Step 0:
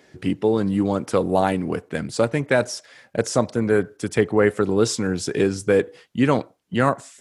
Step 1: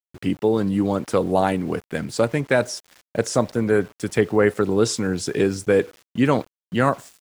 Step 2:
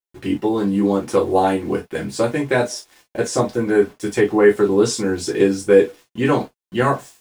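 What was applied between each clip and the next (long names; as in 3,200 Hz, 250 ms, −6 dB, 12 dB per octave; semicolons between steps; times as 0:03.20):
downward expander −46 dBFS; centre clipping without the shift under −41.5 dBFS
reverb whose tail is shaped and stops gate 80 ms falling, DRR −3.5 dB; level −3 dB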